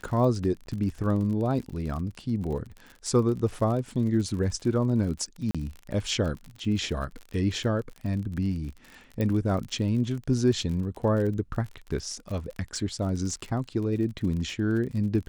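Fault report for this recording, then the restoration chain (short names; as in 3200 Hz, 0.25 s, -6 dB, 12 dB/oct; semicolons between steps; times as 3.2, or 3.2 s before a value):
crackle 47/s -34 dBFS
0.66–0.67 gap 11 ms
5.51–5.55 gap 36 ms
9.21 pop -17 dBFS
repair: de-click; interpolate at 0.66, 11 ms; interpolate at 5.51, 36 ms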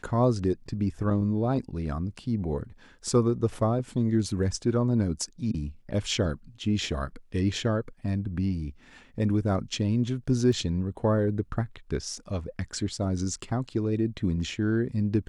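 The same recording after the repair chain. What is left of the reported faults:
9.21 pop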